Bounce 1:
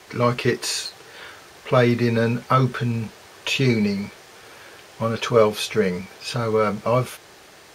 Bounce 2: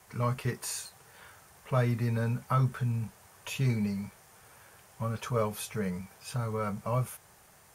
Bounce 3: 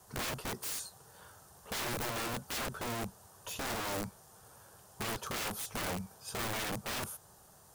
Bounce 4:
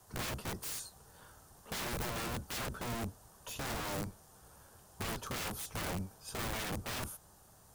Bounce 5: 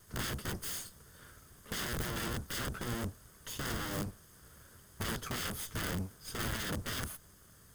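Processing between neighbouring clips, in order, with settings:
drawn EQ curve 110 Hz 0 dB, 190 Hz −3 dB, 320 Hz −15 dB, 880 Hz −5 dB, 4,100 Hz −14 dB, 9,900 Hz +2 dB; level −4.5 dB
parametric band 2,200 Hz −15 dB 0.7 octaves; wrap-around overflow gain 32 dB
sub-octave generator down 1 octave, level +2 dB; surface crackle 280 per second −60 dBFS; level −2.5 dB
lower of the sound and its delayed copy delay 0.61 ms; level +3 dB

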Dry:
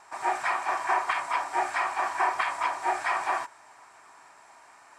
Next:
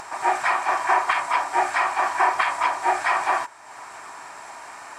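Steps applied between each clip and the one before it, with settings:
upward compression, threshold −36 dBFS
level +6 dB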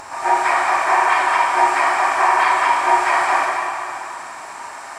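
dense smooth reverb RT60 2.7 s, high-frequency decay 1×, DRR −4.5 dB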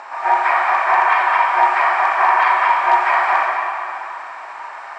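in parallel at −11 dB: wrap-around overflow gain 5 dB
on the sum: band-pass filter 610–2,700 Hz

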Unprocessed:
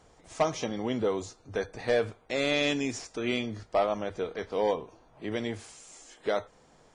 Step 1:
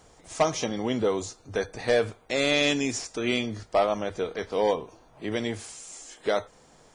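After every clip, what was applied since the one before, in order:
high-shelf EQ 5,500 Hz +7.5 dB
level +3 dB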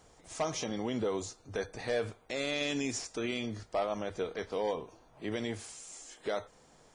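brickwall limiter −19 dBFS, peak gain reduction 6.5 dB
level −5 dB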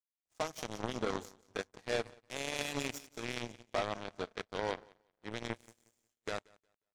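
repeating echo 180 ms, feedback 59%, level −9 dB
power curve on the samples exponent 3
level +6.5 dB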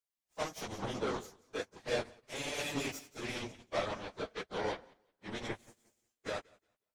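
random phases in long frames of 50 ms

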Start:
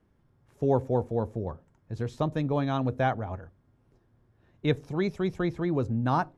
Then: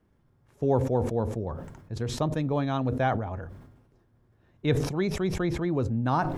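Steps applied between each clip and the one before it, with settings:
level that may fall only so fast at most 56 dB per second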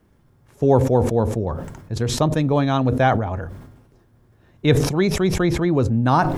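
high-shelf EQ 4,800 Hz +5 dB
level +8.5 dB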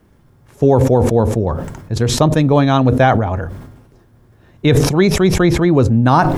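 boost into a limiter +7.5 dB
level −1 dB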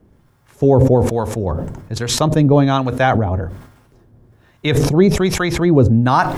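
two-band tremolo in antiphase 1.2 Hz, depth 70%, crossover 770 Hz
level +1.5 dB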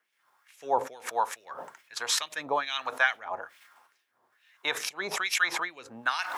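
auto-filter high-pass sine 2.3 Hz 870–2,600 Hz
level −7.5 dB

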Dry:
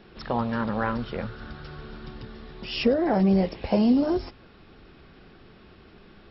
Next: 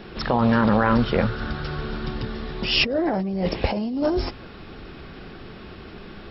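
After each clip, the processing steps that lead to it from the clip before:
compressor whose output falls as the input rises −28 dBFS, ratio −1
level +7 dB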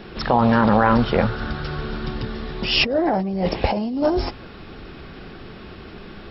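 dynamic equaliser 800 Hz, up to +5 dB, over −37 dBFS, Q 2
level +1.5 dB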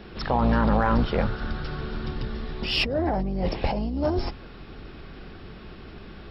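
sub-octave generator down 2 octaves, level +1 dB
in parallel at −7.5 dB: soft clipping −14.5 dBFS, distortion −11 dB
on the sum: level −8.5 dB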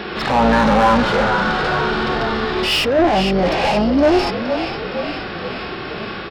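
echo with shifted repeats 466 ms, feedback 65%, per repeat −35 Hz, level −13 dB
mid-hump overdrive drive 27 dB, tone 3,500 Hz, clips at −8.5 dBFS
harmonic and percussive parts rebalanced percussive −13 dB
level +5 dB

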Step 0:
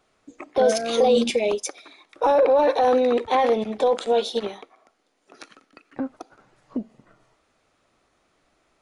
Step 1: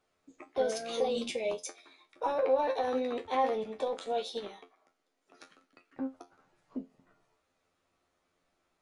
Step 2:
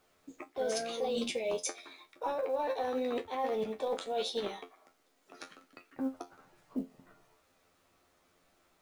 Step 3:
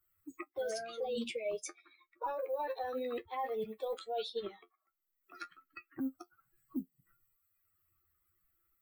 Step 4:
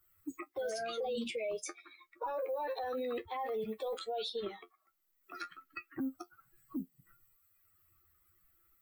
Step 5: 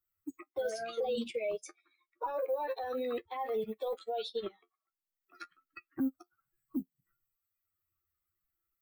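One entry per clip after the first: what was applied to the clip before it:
tuned comb filter 88 Hz, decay 0.17 s, harmonics all, mix 90%; level −5 dB
reversed playback; downward compressor 8 to 1, threshold −37 dBFS, peak gain reduction 14.5 dB; reversed playback; log-companded quantiser 8 bits; level +6.5 dB
spectral dynamics exaggerated over time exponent 2; multiband upward and downward compressor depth 70%
brickwall limiter −37.5 dBFS, peak gain reduction 10 dB; level +7 dB
expander for the loud parts 2.5 to 1, over −48 dBFS; level +5.5 dB

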